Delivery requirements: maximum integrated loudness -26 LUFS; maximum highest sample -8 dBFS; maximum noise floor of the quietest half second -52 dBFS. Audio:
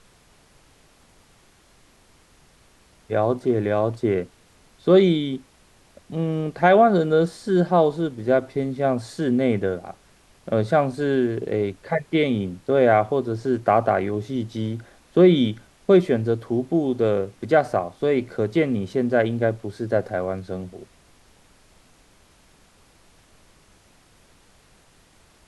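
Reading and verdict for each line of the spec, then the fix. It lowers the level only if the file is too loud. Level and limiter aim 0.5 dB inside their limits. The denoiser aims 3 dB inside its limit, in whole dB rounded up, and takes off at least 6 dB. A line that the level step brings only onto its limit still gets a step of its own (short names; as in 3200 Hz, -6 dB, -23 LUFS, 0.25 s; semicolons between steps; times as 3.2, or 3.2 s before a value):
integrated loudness -21.5 LUFS: fail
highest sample -5.5 dBFS: fail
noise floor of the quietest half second -56 dBFS: OK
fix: gain -5 dB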